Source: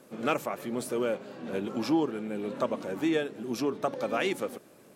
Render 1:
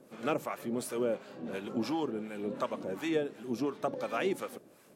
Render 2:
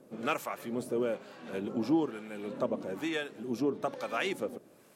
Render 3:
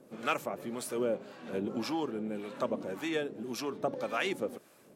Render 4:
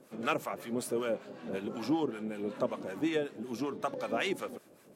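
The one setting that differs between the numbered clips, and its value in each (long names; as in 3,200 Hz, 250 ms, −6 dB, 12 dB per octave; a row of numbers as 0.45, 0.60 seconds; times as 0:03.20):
two-band tremolo in antiphase, speed: 2.8, 1.1, 1.8, 5.3 Hertz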